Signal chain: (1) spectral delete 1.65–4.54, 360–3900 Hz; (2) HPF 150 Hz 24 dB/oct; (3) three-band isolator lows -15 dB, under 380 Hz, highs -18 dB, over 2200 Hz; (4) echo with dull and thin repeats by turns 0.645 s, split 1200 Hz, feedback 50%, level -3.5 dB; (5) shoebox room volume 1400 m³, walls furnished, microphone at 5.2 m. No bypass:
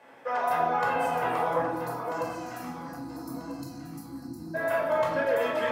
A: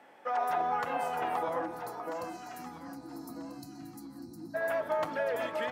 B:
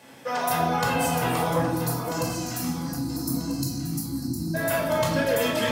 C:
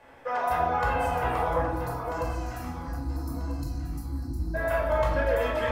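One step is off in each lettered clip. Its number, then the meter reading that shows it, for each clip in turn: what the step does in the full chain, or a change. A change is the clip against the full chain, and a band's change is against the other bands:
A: 5, echo-to-direct 3.0 dB to -6.0 dB; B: 3, 8 kHz band +11.5 dB; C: 2, 125 Hz band +11.0 dB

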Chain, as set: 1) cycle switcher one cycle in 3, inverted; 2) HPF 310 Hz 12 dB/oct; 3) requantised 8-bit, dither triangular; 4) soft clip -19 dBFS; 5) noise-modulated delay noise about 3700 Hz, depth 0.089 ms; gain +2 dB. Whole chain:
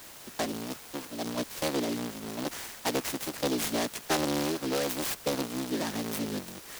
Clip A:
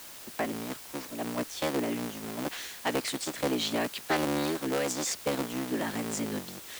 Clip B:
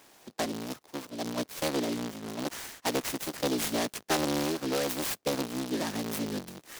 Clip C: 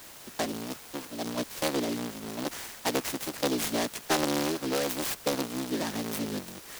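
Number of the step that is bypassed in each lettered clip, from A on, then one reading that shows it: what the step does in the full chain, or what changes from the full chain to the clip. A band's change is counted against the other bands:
5, 2 kHz band +1.5 dB; 3, distortion -14 dB; 4, distortion -21 dB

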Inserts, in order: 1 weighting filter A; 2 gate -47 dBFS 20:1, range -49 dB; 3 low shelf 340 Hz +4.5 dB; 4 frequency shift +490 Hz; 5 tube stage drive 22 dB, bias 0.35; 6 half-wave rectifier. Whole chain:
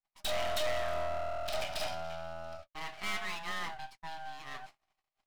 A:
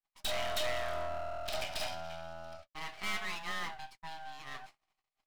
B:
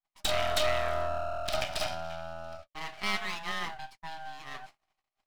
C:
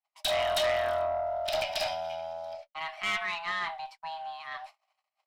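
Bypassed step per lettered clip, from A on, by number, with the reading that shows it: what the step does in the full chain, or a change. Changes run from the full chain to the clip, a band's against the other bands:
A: 3, 500 Hz band -2.5 dB; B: 5, crest factor change +7.0 dB; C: 6, 125 Hz band -8.5 dB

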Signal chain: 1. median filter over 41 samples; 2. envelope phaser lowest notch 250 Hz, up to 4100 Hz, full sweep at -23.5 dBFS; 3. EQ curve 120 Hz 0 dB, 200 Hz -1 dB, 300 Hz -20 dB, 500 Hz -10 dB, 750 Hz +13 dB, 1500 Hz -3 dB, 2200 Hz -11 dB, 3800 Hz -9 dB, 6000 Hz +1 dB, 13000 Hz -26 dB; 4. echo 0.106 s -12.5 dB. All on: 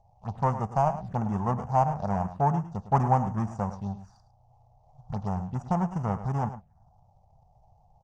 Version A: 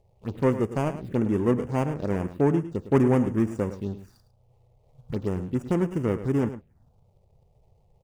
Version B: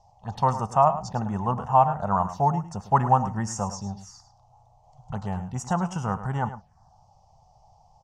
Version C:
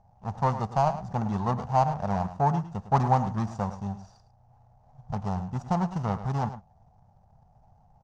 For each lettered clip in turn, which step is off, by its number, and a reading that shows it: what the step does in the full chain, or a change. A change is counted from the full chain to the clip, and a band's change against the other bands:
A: 3, 1 kHz band -15.0 dB; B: 1, 125 Hz band -4.0 dB; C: 2, 2 kHz band +2.0 dB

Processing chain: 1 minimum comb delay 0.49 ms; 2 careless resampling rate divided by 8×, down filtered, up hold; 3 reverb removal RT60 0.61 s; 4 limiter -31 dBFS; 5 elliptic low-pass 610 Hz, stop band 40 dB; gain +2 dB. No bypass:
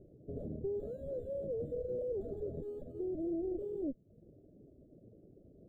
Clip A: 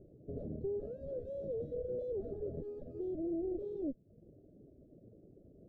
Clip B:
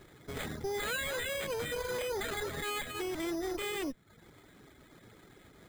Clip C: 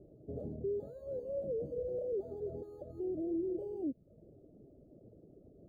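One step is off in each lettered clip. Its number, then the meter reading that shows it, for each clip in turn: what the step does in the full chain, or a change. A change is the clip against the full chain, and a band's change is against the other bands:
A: 2, momentary loudness spread change +15 LU; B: 5, crest factor change -3.0 dB; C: 1, momentary loudness spread change +4 LU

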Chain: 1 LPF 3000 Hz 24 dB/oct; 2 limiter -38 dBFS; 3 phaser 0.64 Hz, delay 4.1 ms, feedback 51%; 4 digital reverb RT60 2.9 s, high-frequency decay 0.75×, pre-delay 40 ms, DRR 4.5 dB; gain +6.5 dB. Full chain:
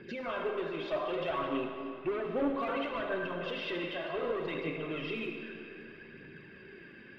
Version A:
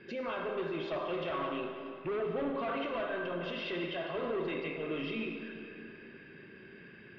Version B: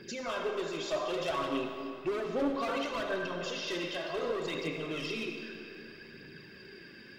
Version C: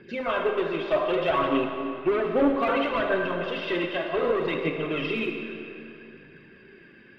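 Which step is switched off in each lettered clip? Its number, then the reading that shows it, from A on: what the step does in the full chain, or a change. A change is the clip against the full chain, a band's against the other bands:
3, crest factor change -2.0 dB; 1, 4 kHz band +4.5 dB; 2, mean gain reduction 5.5 dB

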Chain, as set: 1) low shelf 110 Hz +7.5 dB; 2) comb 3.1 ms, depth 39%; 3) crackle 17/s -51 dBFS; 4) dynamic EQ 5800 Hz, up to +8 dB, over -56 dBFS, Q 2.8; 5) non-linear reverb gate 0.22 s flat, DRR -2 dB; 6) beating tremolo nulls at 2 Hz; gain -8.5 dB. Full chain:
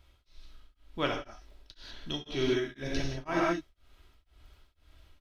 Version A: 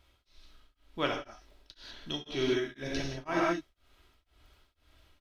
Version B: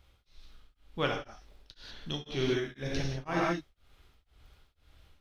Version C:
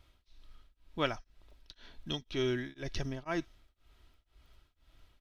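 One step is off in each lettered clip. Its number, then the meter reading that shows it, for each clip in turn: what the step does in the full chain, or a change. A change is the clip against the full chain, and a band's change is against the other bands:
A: 1, 125 Hz band -3.0 dB; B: 2, 125 Hz band +4.0 dB; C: 5, 125 Hz band +3.0 dB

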